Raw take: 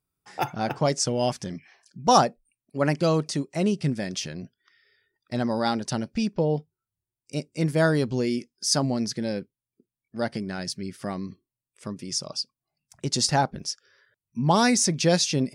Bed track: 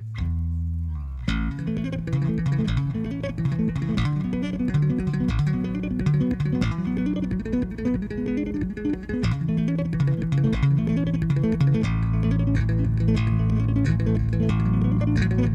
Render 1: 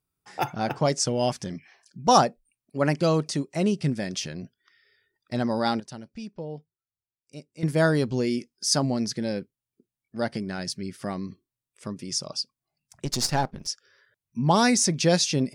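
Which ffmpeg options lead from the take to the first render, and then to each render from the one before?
ffmpeg -i in.wav -filter_complex "[0:a]asettb=1/sr,asplit=3[link_01][link_02][link_03];[link_01]atrim=end=13.054[link_04];[link_02]atrim=start=13.05:end=13.67,asetpts=PTS-STARTPTS,afade=type=in:duration=0.004:curve=qsin,afade=type=out:start_time=0.616:duration=0.004:curve=qsin,aeval=exprs='if(lt(val(0),0),0.447*val(0),val(0))':channel_layout=same[link_05];[link_03]atrim=start=13.666[link_06];[link_04][link_05]acrossfade=duration=0.004:curve1=hsin:curve2=qsin[link_07];[link_07][link_06]acrossfade=duration=0.004:curve1=qsin:curve2=hsin,asplit=3[link_08][link_09][link_10];[link_08]atrim=end=5.802[link_11];[link_09]atrim=start=5.798:end=7.632,asetpts=PTS-STARTPTS,volume=-12dB[link_12];[link_10]atrim=start=7.628[link_13];[link_11][link_12]acrossfade=duration=0.004:curve1=hsin:curve2=hsin[link_14];[link_14][link_13]acrossfade=duration=0.004:curve1=hsin:curve2=hsin" out.wav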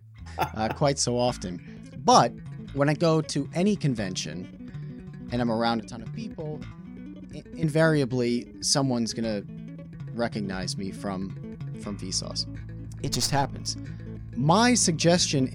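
ffmpeg -i in.wav -i bed.wav -filter_complex "[1:a]volume=-16.5dB[link_01];[0:a][link_01]amix=inputs=2:normalize=0" out.wav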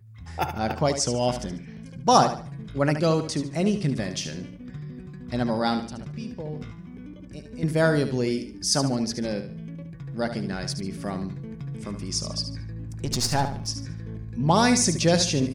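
ffmpeg -i in.wav -af "aecho=1:1:73|146|219|292:0.335|0.107|0.0343|0.011" out.wav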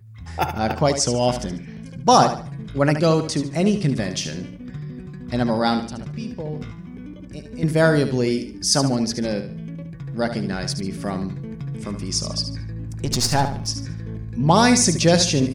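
ffmpeg -i in.wav -af "volume=4.5dB,alimiter=limit=-2dB:level=0:latency=1" out.wav

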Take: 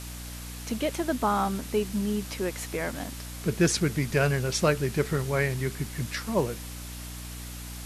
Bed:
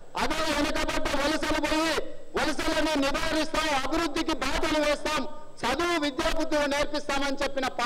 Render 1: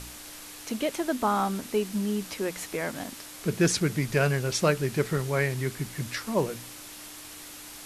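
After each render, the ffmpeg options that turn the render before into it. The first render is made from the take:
ffmpeg -i in.wav -af "bandreject=frequency=60:width_type=h:width=4,bandreject=frequency=120:width_type=h:width=4,bandreject=frequency=180:width_type=h:width=4,bandreject=frequency=240:width_type=h:width=4" out.wav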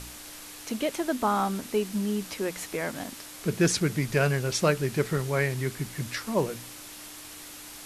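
ffmpeg -i in.wav -af anull out.wav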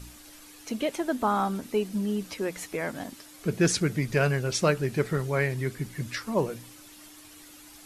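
ffmpeg -i in.wav -af "afftdn=noise_reduction=9:noise_floor=-44" out.wav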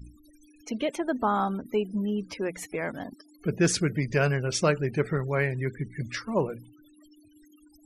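ffmpeg -i in.wav -af "afftfilt=real='re*gte(hypot(re,im),0.00794)':imag='im*gte(hypot(re,im),0.00794)':win_size=1024:overlap=0.75,bandreject=frequency=4000:width=16" out.wav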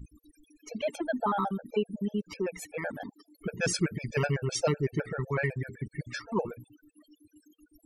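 ffmpeg -i in.wav -af "afftfilt=real='re*gt(sin(2*PI*7.9*pts/sr)*(1-2*mod(floor(b*sr/1024/450),2)),0)':imag='im*gt(sin(2*PI*7.9*pts/sr)*(1-2*mod(floor(b*sr/1024/450),2)),0)':win_size=1024:overlap=0.75" out.wav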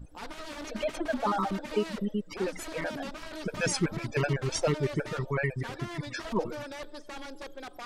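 ffmpeg -i in.wav -i bed.wav -filter_complex "[1:a]volume=-14.5dB[link_01];[0:a][link_01]amix=inputs=2:normalize=0" out.wav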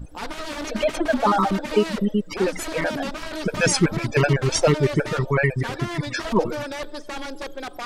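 ffmpeg -i in.wav -af "volume=9.5dB" out.wav

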